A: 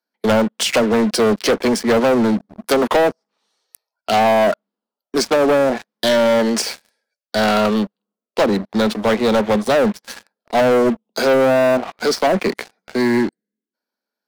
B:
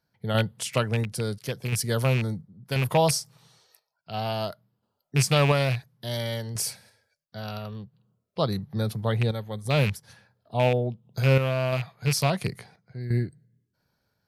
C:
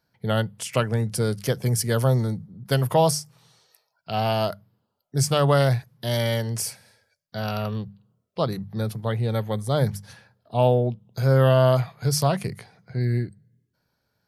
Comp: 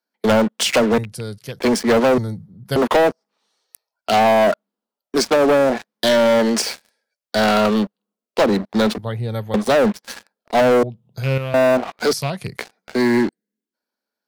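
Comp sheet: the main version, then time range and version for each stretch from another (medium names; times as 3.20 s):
A
0.98–1.59 s: from B
2.18–2.76 s: from C
8.98–9.54 s: from C
10.83–11.54 s: from B
12.13–12.57 s: from B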